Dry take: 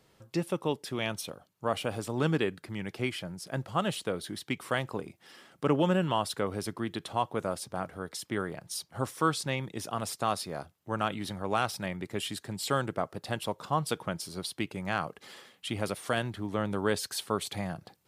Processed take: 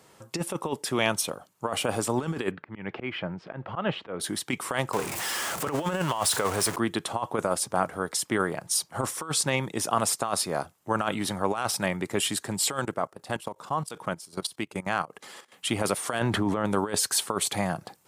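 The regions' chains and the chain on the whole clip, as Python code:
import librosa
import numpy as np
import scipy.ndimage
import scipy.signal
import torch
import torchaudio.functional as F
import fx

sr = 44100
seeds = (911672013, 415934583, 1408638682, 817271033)

y = fx.chain(x, sr, fx.lowpass(hz=2900.0, slope=24),
    fx.auto_swell(attack_ms=168.0), at=(2.51, 4.2))
y = fx.chain(y, sr, fx.zero_step(step_db=-34.5),
    fx.peak_eq(hz=240.0, db=-7.0, octaves=1.8), at=(4.93, 6.76))
y = fx.chain(y, sr, fx.level_steps(step_db=18),
    fx.chopper(hz=2.6, depth_pct=65, duty_pct=80), at=(12.79, 15.52))
y = fx.chain(y, sr, fx.high_shelf(hz=4400.0, db=-10.5),
    fx.env_flatten(amount_pct=70), at=(16.19, 16.65))
y = fx.highpass(y, sr, hz=160.0, slope=6)
y = fx.over_compress(y, sr, threshold_db=-32.0, ratio=-0.5)
y = fx.graphic_eq(y, sr, hz=(1000, 4000, 8000), db=(4, -3, 6))
y = y * librosa.db_to_amplitude(6.0)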